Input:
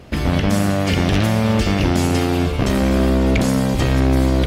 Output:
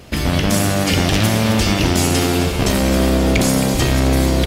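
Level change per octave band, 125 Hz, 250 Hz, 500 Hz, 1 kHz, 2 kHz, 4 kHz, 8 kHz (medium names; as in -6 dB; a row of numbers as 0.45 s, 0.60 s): +0.5 dB, +0.5 dB, +1.5 dB, +2.0 dB, +3.0 dB, +6.0 dB, +9.5 dB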